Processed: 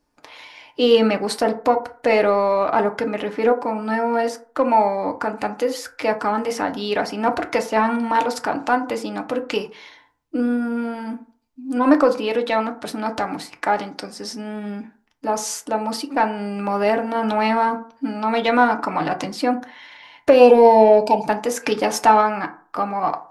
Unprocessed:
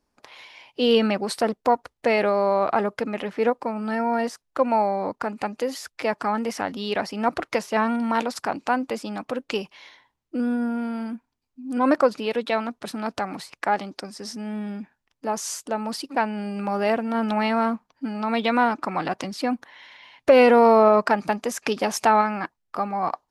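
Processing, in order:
gain on a spectral selection 0:20.33–0:21.24, 1,000–2,300 Hz −29 dB
in parallel at −7.5 dB: soft clipping −17 dBFS, distortion −11 dB
on the sum: feedback delay network reverb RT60 0.44 s, low-frequency decay 0.85×, high-frequency decay 0.4×, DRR 5 dB

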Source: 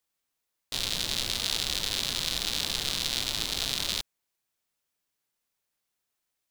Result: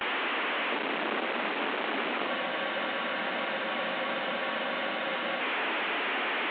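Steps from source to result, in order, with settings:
linear delta modulator 16 kbit/s, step −30 dBFS
Butterworth high-pass 230 Hz 36 dB per octave
noise gate with hold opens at −30 dBFS
frozen spectrum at 0:02.29, 3.12 s
level +7 dB

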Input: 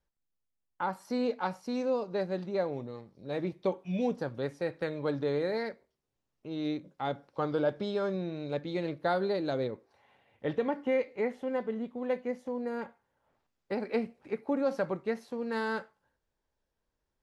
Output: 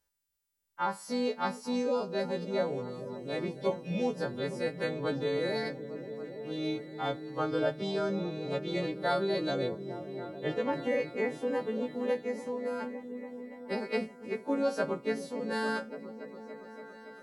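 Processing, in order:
every partial snapped to a pitch grid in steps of 2 semitones
echo whose low-pass opens from repeat to repeat 284 ms, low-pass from 200 Hz, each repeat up 1 octave, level −6 dB
0:10.73–0:12.15: multiband upward and downward compressor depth 40%

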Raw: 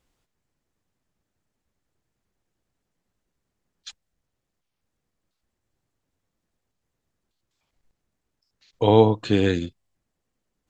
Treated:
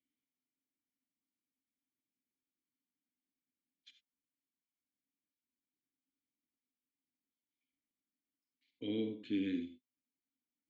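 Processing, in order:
formant filter i
reverb whose tail is shaped and stops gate 110 ms rising, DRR 7.5 dB
level −6.5 dB

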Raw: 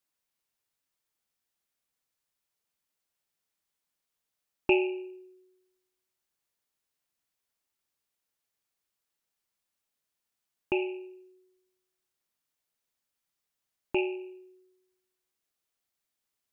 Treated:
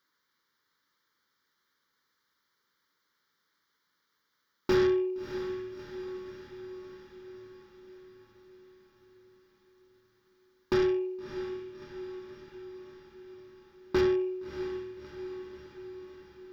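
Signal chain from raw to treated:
mid-hump overdrive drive 28 dB, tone 1,300 Hz, clips at −11.5 dBFS
phaser with its sweep stopped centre 2,600 Hz, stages 6
feedback delay with all-pass diffusion 633 ms, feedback 63%, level −10 dB

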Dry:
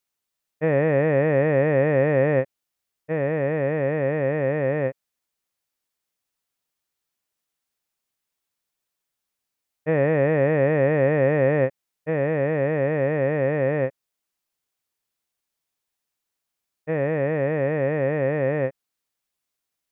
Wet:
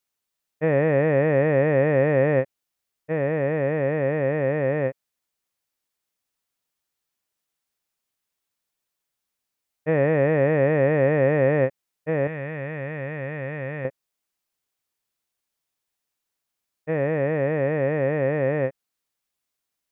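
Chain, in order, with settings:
0:12.27–0:13.85: parametric band 420 Hz −12 dB 2.8 octaves

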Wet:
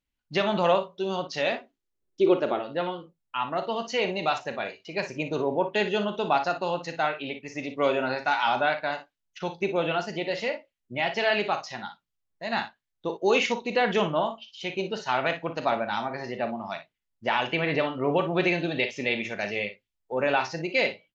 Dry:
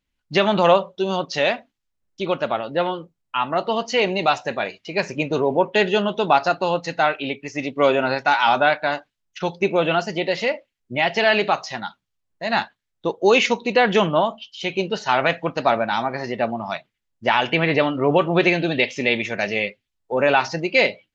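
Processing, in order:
0:01.52–0:02.59: parametric band 370 Hz +14.5 dB 0.7 octaves
ambience of single reflections 39 ms −12.5 dB, 57 ms −11 dB
level −7.5 dB

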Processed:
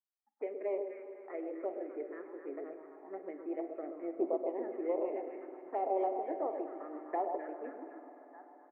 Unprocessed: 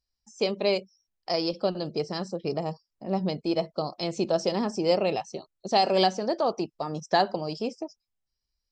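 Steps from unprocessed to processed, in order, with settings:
0:03.82–0:04.34: spectral tilt −3.5 dB per octave
single-tap delay 1,198 ms −21 dB
harmonic generator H 2 −13 dB, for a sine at −10 dBFS
Chebyshev band-pass filter 280–2,100 Hz, order 5
delay that swaps between a low-pass and a high-pass 128 ms, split 1,000 Hz, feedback 67%, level −5 dB
phaser swept by the level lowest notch 410 Hz, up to 1,600 Hz, full sweep at −20.5 dBFS
spring reverb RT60 4 s, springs 49 ms, chirp 65 ms, DRR 9 dB
flanger 1.6 Hz, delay 5.7 ms, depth 2.6 ms, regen −83%
level −4.5 dB

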